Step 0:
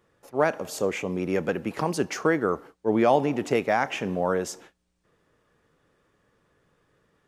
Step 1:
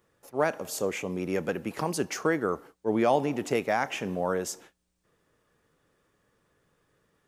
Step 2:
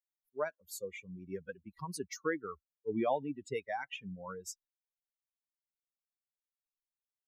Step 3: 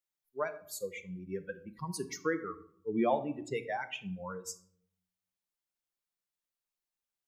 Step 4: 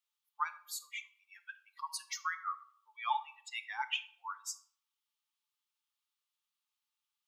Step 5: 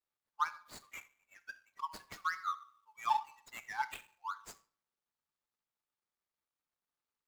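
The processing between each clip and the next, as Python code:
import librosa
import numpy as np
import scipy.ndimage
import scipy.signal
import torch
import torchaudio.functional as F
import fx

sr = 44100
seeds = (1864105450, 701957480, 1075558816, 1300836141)

y1 = fx.high_shelf(x, sr, hz=7300.0, db=9.5)
y1 = y1 * 10.0 ** (-3.5 / 20.0)
y2 = fx.bin_expand(y1, sr, power=3.0)
y2 = y2 * 10.0 ** (-4.0 / 20.0)
y3 = fx.room_shoebox(y2, sr, seeds[0], volume_m3=980.0, walls='furnished', distance_m=0.86)
y3 = y3 * 10.0 ** (2.0 / 20.0)
y4 = scipy.signal.sosfilt(scipy.signal.cheby1(6, 9, 840.0, 'highpass', fs=sr, output='sos'), y3)
y4 = y4 * 10.0 ** (8.0 / 20.0)
y5 = scipy.signal.medfilt(y4, 15)
y5 = y5 * 10.0 ** (2.5 / 20.0)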